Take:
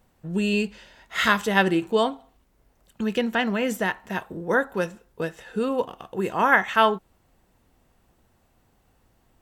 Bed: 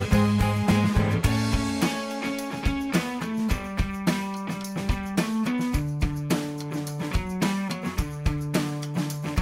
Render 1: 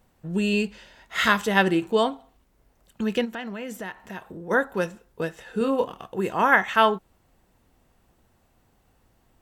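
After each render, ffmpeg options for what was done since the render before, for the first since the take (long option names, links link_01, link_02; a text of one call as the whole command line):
ffmpeg -i in.wav -filter_complex "[0:a]asplit=3[link_01][link_02][link_03];[link_01]afade=type=out:start_time=3.24:duration=0.02[link_04];[link_02]acompressor=threshold=-38dB:ratio=2:attack=3.2:release=140:knee=1:detection=peak,afade=type=in:start_time=3.24:duration=0.02,afade=type=out:start_time=4.5:duration=0.02[link_05];[link_03]afade=type=in:start_time=4.5:duration=0.02[link_06];[link_04][link_05][link_06]amix=inputs=3:normalize=0,asettb=1/sr,asplit=3[link_07][link_08][link_09];[link_07]atrim=end=5.584[link_10];[link_08]atrim=start=5.58:end=6.06,asetpts=PTS-STARTPTS,afade=type=in:duration=0.004:curve=qsin,afade=type=out:start_time=0.476:duration=0.004:curve=qsin,asplit=2[link_11][link_12];[link_12]adelay=26,volume=-6.5dB[link_13];[link_11][link_13]amix=inputs=2:normalize=0,atrim=end_sample=21168[link_14];[link_09]atrim=start=6.056[link_15];[link_10][link_14]acrossfade=duration=0.004:curve1=hsin:curve2=qsin[link_16];[link_16][link_15]acrossfade=duration=0.004:curve1=qsin:curve2=hsin" out.wav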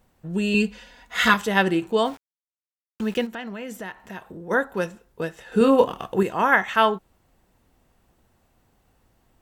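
ffmpeg -i in.wav -filter_complex "[0:a]asettb=1/sr,asplit=3[link_01][link_02][link_03];[link_01]atrim=end=0.544[link_04];[link_02]atrim=start=0.54:end=1.34,asetpts=PTS-STARTPTS,afade=type=in:duration=0.004:curve=qsin,afade=type=out:start_time=0.796:duration=0.004:curve=qsin,aecho=1:1:4.1:0.85,atrim=end_sample=35280[link_05];[link_03]atrim=start=1.336[link_06];[link_04][link_05]acrossfade=duration=0.004:curve1=hsin:curve2=qsin[link_07];[link_07][link_06]acrossfade=duration=0.004:curve1=qsin:curve2=hsin,asettb=1/sr,asplit=3[link_08][link_09][link_10];[link_08]atrim=end=2.054[link_11];[link_09]atrim=start=2.05:end=3.27,asetpts=PTS-STARTPTS,afade=type=in:duration=0.004:curve=qsin,afade=type=out:start_time=1.216:duration=0.004:curve=qsin,aeval=exprs='val(0)*gte(abs(val(0)),0.01)':channel_layout=same[link_12];[link_10]atrim=start=3.266[link_13];[link_11][link_12]acrossfade=duration=0.004:curve1=hsin:curve2=qsin[link_14];[link_14][link_13]acrossfade=duration=0.004:curve1=qsin:curve2=hsin,asplit=3[link_15][link_16][link_17];[link_15]atrim=end=5.522[link_18];[link_16]atrim=start=5.518:end=6.232,asetpts=PTS-STARTPTS,volume=7dB[link_19];[link_17]atrim=start=6.228[link_20];[link_18][link_19]acrossfade=duration=0.004:curve1=hsin:curve2=hsin[link_21];[link_21][link_20]acrossfade=duration=0.004:curve1=hsin:curve2=hsin" out.wav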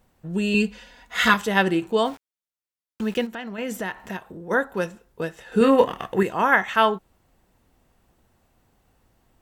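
ffmpeg -i in.wav -filter_complex "[0:a]asettb=1/sr,asplit=3[link_01][link_02][link_03];[link_01]atrim=end=3.584[link_04];[link_02]atrim=start=3.58:end=4.17,asetpts=PTS-STARTPTS,afade=type=in:duration=0.004:curve=qsin,afade=type=out:start_time=0.586:duration=0.004:curve=qsin,acontrast=35[link_05];[link_03]atrim=start=4.166[link_06];[link_04][link_05]acrossfade=duration=0.004:curve1=hsin:curve2=qsin[link_07];[link_07][link_06]acrossfade=duration=0.004:curve1=qsin:curve2=hsin,asettb=1/sr,asplit=3[link_08][link_09][link_10];[link_08]atrim=end=5.624[link_11];[link_09]atrim=start=5.62:end=6.25,asetpts=PTS-STARTPTS,afade=type=in:duration=0.004:curve=qsin,afade=type=out:start_time=0.626:duration=0.004:curve=qsin,equalizer=frequency=1900:width=3.2:gain=13[link_12];[link_10]atrim=start=6.246[link_13];[link_11][link_12]acrossfade=duration=0.004:curve1=hsin:curve2=qsin[link_14];[link_14][link_13]acrossfade=duration=0.004:curve1=qsin:curve2=hsin" out.wav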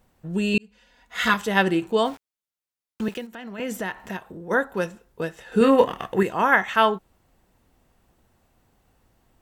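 ffmpeg -i in.wav -filter_complex "[0:a]asettb=1/sr,asplit=3[link_01][link_02][link_03];[link_01]atrim=end=3.084[link_04];[link_02]atrim=start=3.08:end=3.6,asetpts=PTS-STARTPTS,afade=type=in:duration=0.004:curve=qsin,afade=type=out:start_time=0.516:duration=0.004:curve=qsin,acrossover=split=430|6400[link_05][link_06][link_07];[link_05]acompressor=threshold=-36dB:ratio=4[link_08];[link_06]acompressor=threshold=-36dB:ratio=4[link_09];[link_07]acompressor=threshold=-52dB:ratio=4[link_10];[link_08][link_09][link_10]amix=inputs=3:normalize=0[link_11];[link_03]atrim=start=3.596[link_12];[link_04][link_11]acrossfade=duration=0.004:curve1=hsin:curve2=qsin[link_13];[link_13][link_12]acrossfade=duration=0.004:curve1=qsin:curve2=hsin,asplit=2[link_14][link_15];[link_14]atrim=end=0.58,asetpts=PTS-STARTPTS,afade=type=out:start_time=0.576:duration=0.004:curve=hsin[link_16];[link_15]atrim=start=0.58,asetpts=PTS-STARTPTS,afade=type=in:duration=1.01[link_17];[link_16][link_17]concat=n=2:v=0:a=1" out.wav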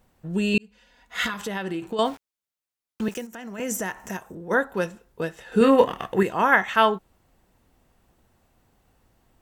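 ffmpeg -i in.wav -filter_complex "[0:a]asettb=1/sr,asplit=3[link_01][link_02][link_03];[link_01]atrim=end=1.264[link_04];[link_02]atrim=start=1.26:end=1.99,asetpts=PTS-STARTPTS,afade=type=in:duration=0.004:curve=qsin,afade=type=out:start_time=0.726:duration=0.004:curve=qsin,acompressor=threshold=-25dB:ratio=10:attack=3.2:release=140:knee=1:detection=peak[link_05];[link_03]atrim=start=1.986[link_06];[link_04][link_05]acrossfade=duration=0.004:curve1=hsin:curve2=qsin[link_07];[link_07][link_06]acrossfade=duration=0.004:curve1=qsin:curve2=hsin,asettb=1/sr,asplit=3[link_08][link_09][link_10];[link_08]atrim=end=3.114[link_11];[link_09]atrim=start=3.11:end=4.35,asetpts=PTS-STARTPTS,afade=type=in:duration=0.004:curve=qsin,afade=type=out:start_time=1.236:duration=0.004:curve=qsin,highshelf=frequency=5000:width_type=q:width=3:gain=6.5[link_12];[link_10]atrim=start=4.346[link_13];[link_11][link_12]acrossfade=duration=0.004:curve1=hsin:curve2=qsin[link_14];[link_14][link_13]acrossfade=duration=0.004:curve1=qsin:curve2=hsin" out.wav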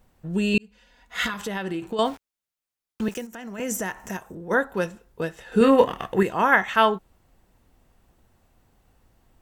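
ffmpeg -i in.wav -af "lowshelf=frequency=65:gain=6" out.wav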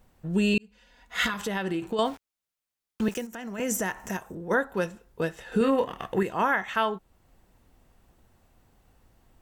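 ffmpeg -i in.wav -af "alimiter=limit=-14dB:level=0:latency=1:release=469" out.wav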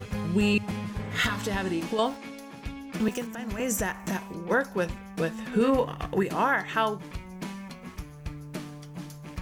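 ffmpeg -i in.wav -i bed.wav -filter_complex "[1:a]volume=-12dB[link_01];[0:a][link_01]amix=inputs=2:normalize=0" out.wav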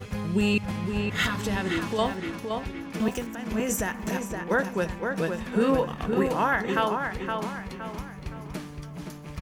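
ffmpeg -i in.wav -filter_complex "[0:a]asplit=2[link_01][link_02];[link_02]adelay=517,lowpass=frequency=3300:poles=1,volume=-5dB,asplit=2[link_03][link_04];[link_04]adelay=517,lowpass=frequency=3300:poles=1,volume=0.44,asplit=2[link_05][link_06];[link_06]adelay=517,lowpass=frequency=3300:poles=1,volume=0.44,asplit=2[link_07][link_08];[link_08]adelay=517,lowpass=frequency=3300:poles=1,volume=0.44,asplit=2[link_09][link_10];[link_10]adelay=517,lowpass=frequency=3300:poles=1,volume=0.44[link_11];[link_01][link_03][link_05][link_07][link_09][link_11]amix=inputs=6:normalize=0" out.wav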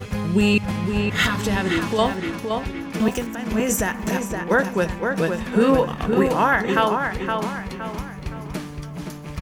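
ffmpeg -i in.wav -af "volume=6dB" out.wav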